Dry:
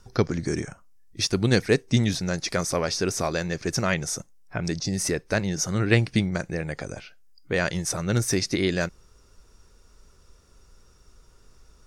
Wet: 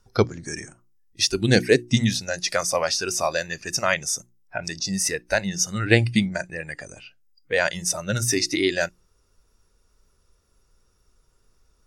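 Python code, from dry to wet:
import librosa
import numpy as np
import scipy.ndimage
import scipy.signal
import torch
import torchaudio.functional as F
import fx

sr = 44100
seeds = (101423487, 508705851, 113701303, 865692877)

y = fx.noise_reduce_blind(x, sr, reduce_db=13)
y = fx.hum_notches(y, sr, base_hz=60, count=6)
y = y * 10.0 ** (4.5 / 20.0)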